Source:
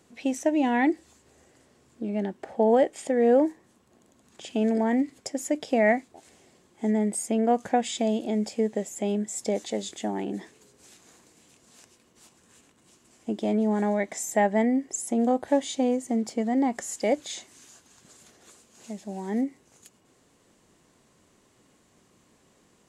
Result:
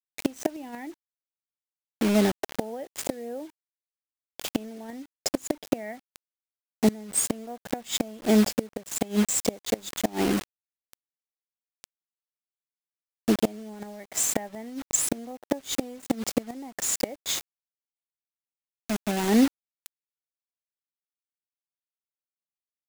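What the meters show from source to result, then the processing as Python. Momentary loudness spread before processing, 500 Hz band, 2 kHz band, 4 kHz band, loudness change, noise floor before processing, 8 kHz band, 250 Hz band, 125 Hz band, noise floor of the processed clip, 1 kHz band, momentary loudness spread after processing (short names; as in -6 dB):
11 LU, -5.0 dB, -3.0 dB, +6.0 dB, -1.0 dB, -63 dBFS, +6.5 dB, -1.5 dB, n/a, under -85 dBFS, -7.0 dB, 16 LU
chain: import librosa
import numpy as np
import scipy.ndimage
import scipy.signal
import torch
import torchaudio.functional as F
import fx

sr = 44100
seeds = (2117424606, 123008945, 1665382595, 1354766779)

y = fx.quant_dither(x, sr, seeds[0], bits=6, dither='none')
y = fx.gate_flip(y, sr, shuts_db=-17.0, range_db=-24)
y = y * 10.0 ** (7.5 / 20.0)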